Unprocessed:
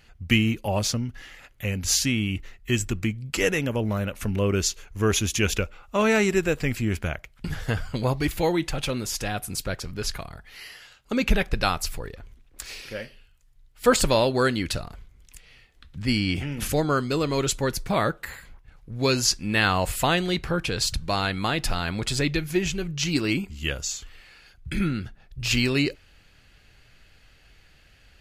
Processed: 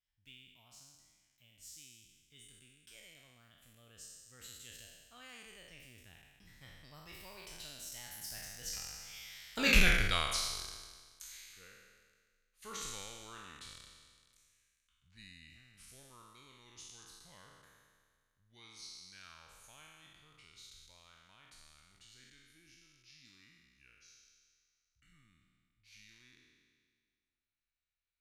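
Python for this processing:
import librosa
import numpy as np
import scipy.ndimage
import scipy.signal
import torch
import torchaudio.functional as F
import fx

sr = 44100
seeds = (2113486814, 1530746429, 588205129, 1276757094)

y = fx.spec_trails(x, sr, decay_s=1.69)
y = fx.doppler_pass(y, sr, speed_mps=48, closest_m=9.9, pass_at_s=9.72)
y = fx.tone_stack(y, sr, knobs='5-5-5')
y = y * librosa.db_to_amplitude(6.0)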